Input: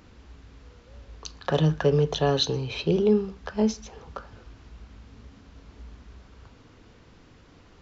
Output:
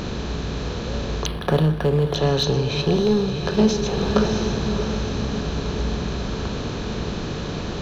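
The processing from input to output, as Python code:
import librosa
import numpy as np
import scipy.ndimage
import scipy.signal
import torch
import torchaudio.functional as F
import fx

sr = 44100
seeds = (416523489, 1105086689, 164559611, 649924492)

p1 = fx.bin_compress(x, sr, power=0.6)
p2 = np.clip(10.0 ** (19.0 / 20.0) * p1, -1.0, 1.0) / 10.0 ** (19.0 / 20.0)
p3 = p1 + (p2 * librosa.db_to_amplitude(-6.0))
p4 = fx.low_shelf(p3, sr, hz=95.0, db=9.5)
p5 = p4 + fx.echo_diffused(p4, sr, ms=651, feedback_pct=49, wet_db=-9, dry=0)
p6 = fx.rider(p5, sr, range_db=5, speed_s=0.5)
y = fx.resample_linear(p6, sr, factor=6, at=(1.26, 2.14))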